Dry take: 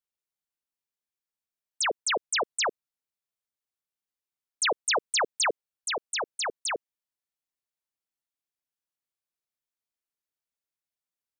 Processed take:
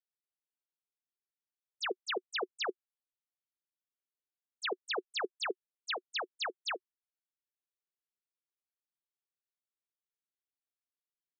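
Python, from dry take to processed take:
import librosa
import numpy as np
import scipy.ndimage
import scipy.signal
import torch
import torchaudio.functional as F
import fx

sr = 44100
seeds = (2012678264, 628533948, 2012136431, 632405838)

y = fx.level_steps(x, sr, step_db=10)
y = fx.cabinet(y, sr, low_hz=360.0, low_slope=12, high_hz=4200.0, hz=(370.0, 580.0, 960.0, 2100.0), db=(9, -8, -9, -7))
y = y * librosa.db_to_amplitude(-1.0)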